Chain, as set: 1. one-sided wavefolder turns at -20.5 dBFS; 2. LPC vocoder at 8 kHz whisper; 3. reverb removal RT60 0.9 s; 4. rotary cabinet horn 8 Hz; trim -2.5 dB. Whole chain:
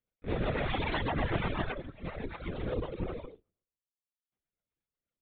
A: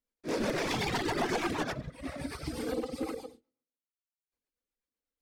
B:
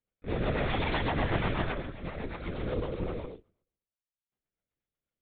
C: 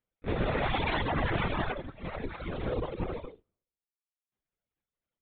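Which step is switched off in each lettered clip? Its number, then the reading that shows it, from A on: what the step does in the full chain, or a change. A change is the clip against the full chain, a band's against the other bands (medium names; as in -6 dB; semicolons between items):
2, 125 Hz band -7.0 dB; 3, loudness change +2.0 LU; 4, 1 kHz band +1.5 dB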